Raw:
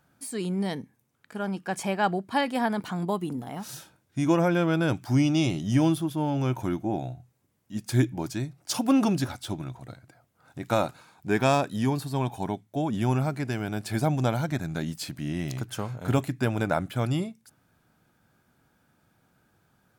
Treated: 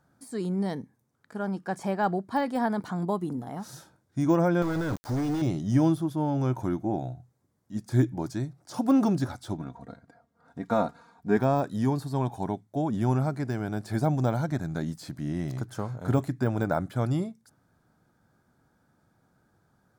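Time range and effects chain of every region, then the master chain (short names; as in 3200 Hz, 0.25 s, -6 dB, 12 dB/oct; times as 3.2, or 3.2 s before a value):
4.62–5.42 tilt shelf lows -6.5 dB, about 1500 Hz + companded quantiser 2-bit
9.57–11.37 LPF 3000 Hz 6 dB/oct + comb 4.3 ms, depth 68%
whole clip: high shelf 9500 Hz -11 dB; de-esser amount 95%; bell 2700 Hz -12 dB 0.76 oct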